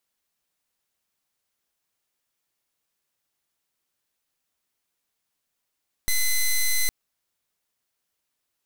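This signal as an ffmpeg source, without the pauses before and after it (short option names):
-f lavfi -i "aevalsrc='0.0891*(2*lt(mod(2030*t,1),0.09)-1)':d=0.81:s=44100"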